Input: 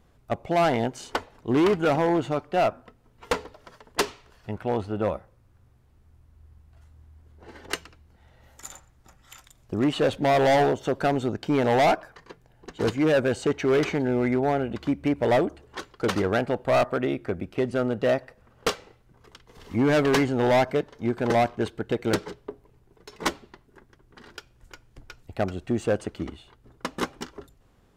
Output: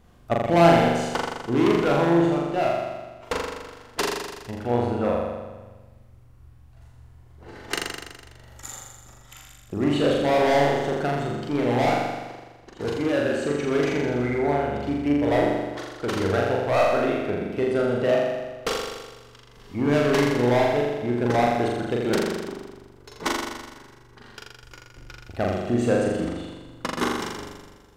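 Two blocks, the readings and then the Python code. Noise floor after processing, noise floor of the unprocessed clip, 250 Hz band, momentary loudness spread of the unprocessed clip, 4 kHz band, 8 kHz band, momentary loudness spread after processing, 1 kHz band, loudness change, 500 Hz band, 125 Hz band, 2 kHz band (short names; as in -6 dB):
-51 dBFS, -60 dBFS, +2.0 dB, 14 LU, +2.0 dB, +2.5 dB, 17 LU, +2.0 dB, +1.5 dB, +2.0 dB, +2.5 dB, +2.0 dB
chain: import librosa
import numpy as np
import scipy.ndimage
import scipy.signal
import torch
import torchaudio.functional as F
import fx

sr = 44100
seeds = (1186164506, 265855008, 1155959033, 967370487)

y = fx.rider(x, sr, range_db=10, speed_s=2.0)
y = fx.room_flutter(y, sr, wall_m=7.1, rt60_s=1.3)
y = y * 10.0 ** (-2.5 / 20.0)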